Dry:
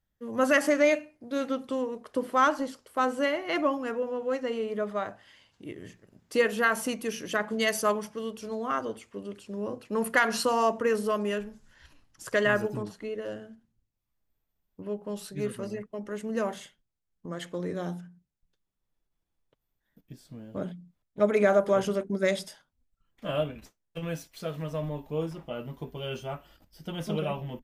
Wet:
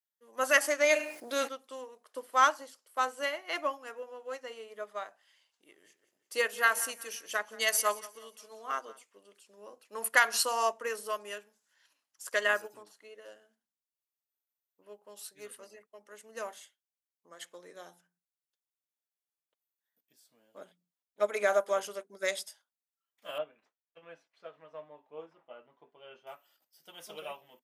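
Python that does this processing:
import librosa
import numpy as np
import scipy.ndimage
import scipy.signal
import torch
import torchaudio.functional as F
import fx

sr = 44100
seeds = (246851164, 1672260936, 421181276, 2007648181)

y = fx.env_flatten(x, sr, amount_pct=70, at=(0.89, 1.47), fade=0.02)
y = fx.echo_feedback(y, sr, ms=179, feedback_pct=45, wet_db=-15, at=(5.67, 9.02), fade=0.02)
y = fx.lowpass(y, sr, hz=1900.0, slope=12, at=(23.38, 26.27))
y = scipy.signal.sosfilt(scipy.signal.butter(2, 600.0, 'highpass', fs=sr, output='sos'), y)
y = fx.high_shelf(y, sr, hz=5200.0, db=11.5)
y = fx.upward_expand(y, sr, threshold_db=-45.0, expansion=1.5)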